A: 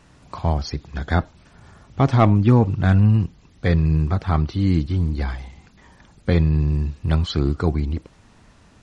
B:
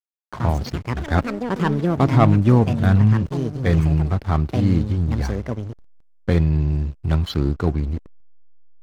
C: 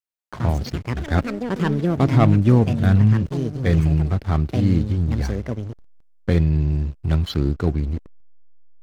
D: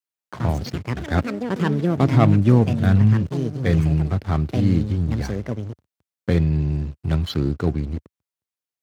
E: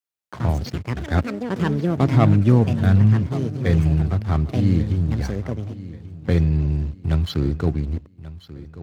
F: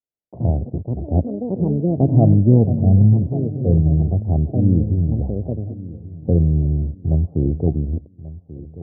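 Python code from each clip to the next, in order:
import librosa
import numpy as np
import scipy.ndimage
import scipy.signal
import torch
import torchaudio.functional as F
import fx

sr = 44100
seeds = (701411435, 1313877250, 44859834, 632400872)

y1 = fx.echo_pitch(x, sr, ms=89, semitones=6, count=3, db_per_echo=-6.0)
y1 = fx.backlash(y1, sr, play_db=-29.0)
y2 = fx.dynamic_eq(y1, sr, hz=980.0, q=1.4, threshold_db=-39.0, ratio=4.0, max_db=-5)
y3 = scipy.signal.sosfilt(scipy.signal.butter(4, 79.0, 'highpass', fs=sr, output='sos'), y2)
y4 = fx.peak_eq(y3, sr, hz=71.0, db=4.0, octaves=0.97)
y4 = fx.echo_feedback(y4, sr, ms=1136, feedback_pct=32, wet_db=-17.0)
y4 = y4 * 10.0 ** (-1.0 / 20.0)
y5 = scipy.signal.sosfilt(scipy.signal.butter(8, 720.0, 'lowpass', fs=sr, output='sos'), y4)
y5 = y5 * 10.0 ** (2.5 / 20.0)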